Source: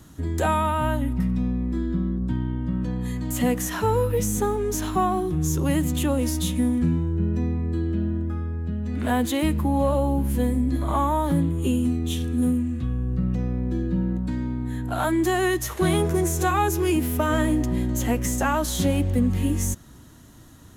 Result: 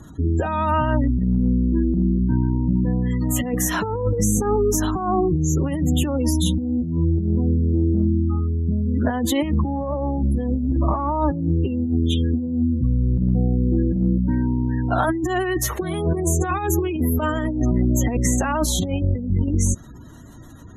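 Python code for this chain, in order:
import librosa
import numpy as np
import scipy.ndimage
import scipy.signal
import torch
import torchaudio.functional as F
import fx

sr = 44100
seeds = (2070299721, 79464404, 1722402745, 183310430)

y = fx.spec_gate(x, sr, threshold_db=-25, keep='strong')
y = fx.over_compress(y, sr, threshold_db=-24.0, ratio=-0.5)
y = y * 10.0 ** (5.0 / 20.0)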